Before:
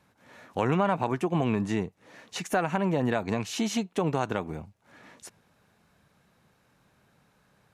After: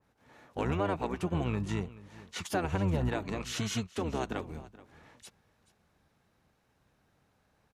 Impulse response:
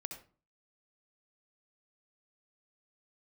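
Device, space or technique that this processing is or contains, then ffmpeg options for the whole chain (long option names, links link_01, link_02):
octave pedal: -filter_complex "[0:a]asplit=2[link_01][link_02];[link_02]asetrate=22050,aresample=44100,atempo=2,volume=-1dB[link_03];[link_01][link_03]amix=inputs=2:normalize=0,asettb=1/sr,asplit=3[link_04][link_05][link_06];[link_04]atrim=end=2.644[link_07];[link_05]atrim=start=2.64:end=3.09,asetpts=PTS-STARTPTS,afade=type=in:duration=0.004:curve=qsin,afade=type=out:start_time=0.446:duration=0.004:curve=qsin,lowshelf=frequency=130:gain=8.5[link_08];[link_06]atrim=start=3.086[link_09];[link_07][link_08]acrossfade=duration=0.004:curve1=hsin:curve2=qsin[link_10];[link_10][link_09]acrossfade=duration=0.004:curve1=qsin:curve2=hsin,aecho=1:1:429:0.119,adynamicequalizer=threshold=0.01:dfrequency=2100:dqfactor=0.7:tfrequency=2100:tqfactor=0.7:attack=5:release=100:ratio=0.375:range=2.5:mode=boostabove:tftype=highshelf,volume=-8dB"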